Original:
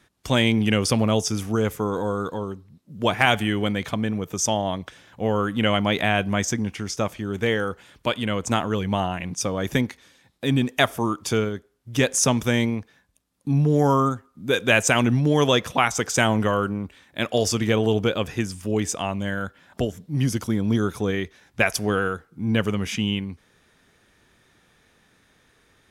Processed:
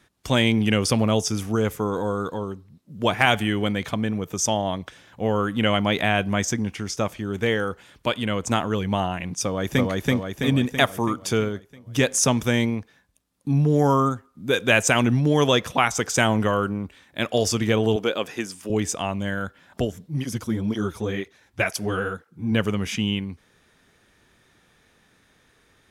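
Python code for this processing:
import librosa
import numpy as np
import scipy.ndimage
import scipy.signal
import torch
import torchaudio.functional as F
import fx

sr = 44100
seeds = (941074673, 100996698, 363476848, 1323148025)

y = fx.echo_throw(x, sr, start_s=9.43, length_s=0.46, ms=330, feedback_pct=55, wet_db=0.0)
y = fx.highpass(y, sr, hz=280.0, slope=12, at=(17.96, 18.7))
y = fx.flanger_cancel(y, sr, hz=2.0, depth_ms=7.4, at=(20.07, 22.51), fade=0.02)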